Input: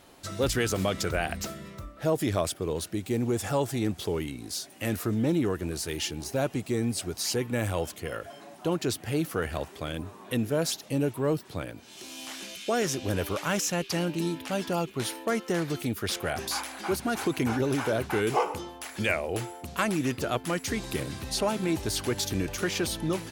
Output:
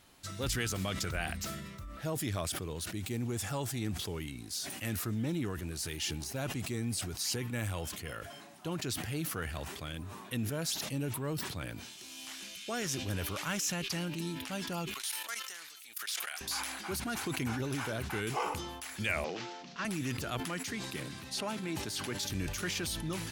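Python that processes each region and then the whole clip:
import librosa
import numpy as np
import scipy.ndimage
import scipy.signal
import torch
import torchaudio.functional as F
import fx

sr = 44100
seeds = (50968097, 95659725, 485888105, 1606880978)

y = fx.chain(x, sr, fx.highpass(hz=1100.0, slope=12),
    fx.high_shelf(hz=2900.0, db=8.0),
    fx.level_steps(step_db=16), at=(14.94, 16.41))
y = fx.chain(y, sr, fx.cvsd(bps=32000),
    fx.steep_highpass(hz=160.0, slope=36),
    fx.transient(attack_db=-2, sustain_db=6), at=(19.24, 19.85))
y = fx.chain(y, sr, fx.highpass(hz=160.0, slope=12),
    fx.high_shelf(hz=5500.0, db=-6.0), at=(20.4, 22.3))
y = fx.peak_eq(y, sr, hz=490.0, db=-9.0, octaves=2.0)
y = fx.sustainer(y, sr, db_per_s=36.0)
y = y * librosa.db_to_amplitude(-4.0)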